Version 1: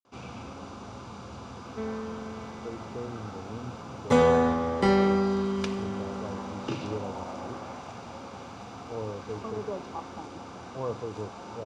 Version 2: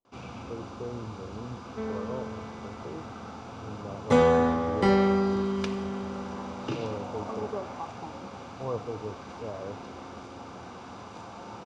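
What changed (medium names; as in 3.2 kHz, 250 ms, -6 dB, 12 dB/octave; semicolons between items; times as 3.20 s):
speech: entry -2.15 s; master: add treble shelf 8.7 kHz -7 dB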